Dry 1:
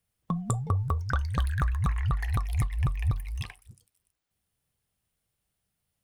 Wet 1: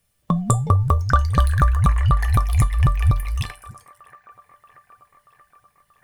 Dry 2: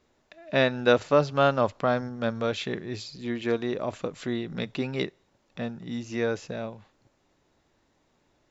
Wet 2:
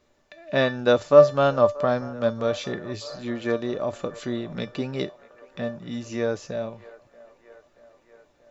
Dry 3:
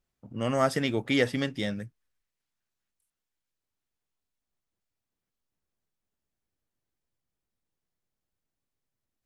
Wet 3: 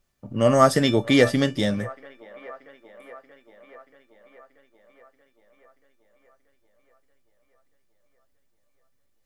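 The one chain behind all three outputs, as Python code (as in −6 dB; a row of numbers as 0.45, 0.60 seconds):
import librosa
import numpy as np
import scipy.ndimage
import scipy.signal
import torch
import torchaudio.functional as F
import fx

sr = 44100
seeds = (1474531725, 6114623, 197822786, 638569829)

y = fx.comb_fb(x, sr, f0_hz=590.0, decay_s=0.23, harmonics='all', damping=0.0, mix_pct=80)
y = fx.echo_wet_bandpass(y, sr, ms=632, feedback_pct=66, hz=900.0, wet_db=-19.0)
y = fx.dynamic_eq(y, sr, hz=2400.0, q=1.2, threshold_db=-58.0, ratio=4.0, max_db=-6)
y = librosa.util.normalize(y) * 10.0 ** (-2 / 20.0)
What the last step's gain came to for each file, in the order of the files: +22.5, +14.0, +21.0 decibels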